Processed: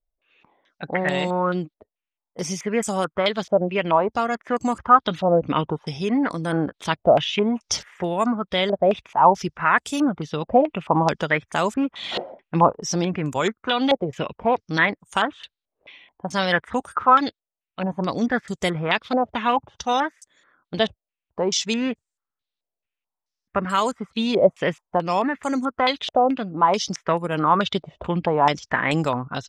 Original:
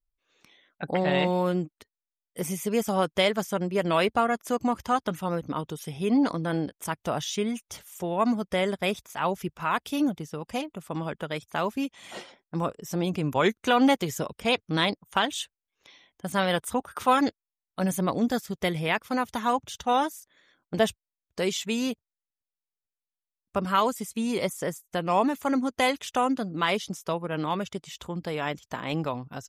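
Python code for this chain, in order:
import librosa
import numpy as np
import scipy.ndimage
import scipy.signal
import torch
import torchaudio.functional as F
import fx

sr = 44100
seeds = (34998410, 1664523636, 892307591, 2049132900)

y = fx.rider(x, sr, range_db=10, speed_s=0.5)
y = fx.filter_held_lowpass(y, sr, hz=4.6, low_hz=640.0, high_hz=7800.0)
y = y * 10.0 ** (3.0 / 20.0)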